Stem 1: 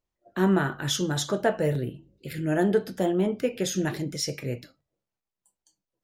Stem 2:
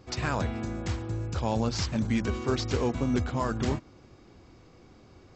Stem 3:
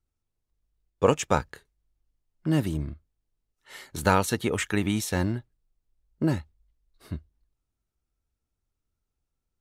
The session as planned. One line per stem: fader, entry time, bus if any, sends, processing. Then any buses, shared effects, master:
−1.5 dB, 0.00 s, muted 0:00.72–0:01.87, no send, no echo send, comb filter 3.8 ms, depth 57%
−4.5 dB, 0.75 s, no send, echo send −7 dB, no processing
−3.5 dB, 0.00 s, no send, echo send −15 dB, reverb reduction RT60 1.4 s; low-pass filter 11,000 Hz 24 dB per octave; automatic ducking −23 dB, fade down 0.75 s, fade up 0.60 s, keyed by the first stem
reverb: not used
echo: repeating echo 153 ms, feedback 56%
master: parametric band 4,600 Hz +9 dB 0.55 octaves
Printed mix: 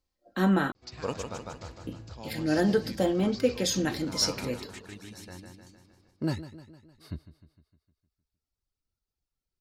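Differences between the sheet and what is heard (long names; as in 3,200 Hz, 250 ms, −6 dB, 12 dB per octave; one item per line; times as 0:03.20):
stem 2 −4.5 dB → −15.0 dB
stem 3: missing low-pass filter 11,000 Hz 24 dB per octave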